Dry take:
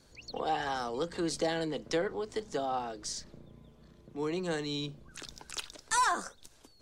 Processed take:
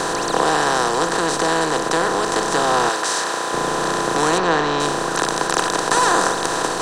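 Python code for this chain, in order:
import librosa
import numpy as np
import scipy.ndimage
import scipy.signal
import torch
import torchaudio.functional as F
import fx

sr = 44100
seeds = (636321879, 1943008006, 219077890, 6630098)

y = fx.bin_compress(x, sr, power=0.2)
y = fx.highpass(y, sr, hz=770.0, slope=6, at=(2.89, 3.53))
y = fx.rider(y, sr, range_db=10, speed_s=2.0)
y = fx.lowpass(y, sr, hz=3800.0, slope=12, at=(4.38, 4.8))
y = F.gain(torch.from_numpy(y), 5.0).numpy()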